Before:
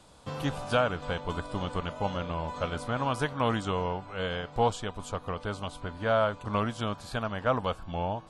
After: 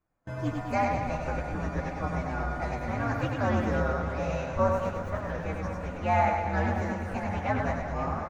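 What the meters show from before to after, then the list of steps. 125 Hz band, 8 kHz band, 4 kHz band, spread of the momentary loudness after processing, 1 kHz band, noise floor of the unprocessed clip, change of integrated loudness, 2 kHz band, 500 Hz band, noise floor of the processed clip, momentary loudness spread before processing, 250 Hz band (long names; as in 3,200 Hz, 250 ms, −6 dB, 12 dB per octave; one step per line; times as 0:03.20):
+3.0 dB, −4.5 dB, −10.5 dB, 7 LU, +2.0 dB, −49 dBFS, +1.5 dB, +1.5 dB, 0.0 dB, −37 dBFS, 8 LU, +2.5 dB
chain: partials spread apart or drawn together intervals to 127%
low-pass filter 1,200 Hz 6 dB per octave
mains-hum notches 50/100/150/200 Hz
on a send: reverse bouncing-ball delay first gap 100 ms, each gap 1.15×, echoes 5
on the sum: noise gate with hold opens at −39 dBFS
feedback echo with a swinging delay time 528 ms, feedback 77%, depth 189 cents, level −13.5 dB
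level +3 dB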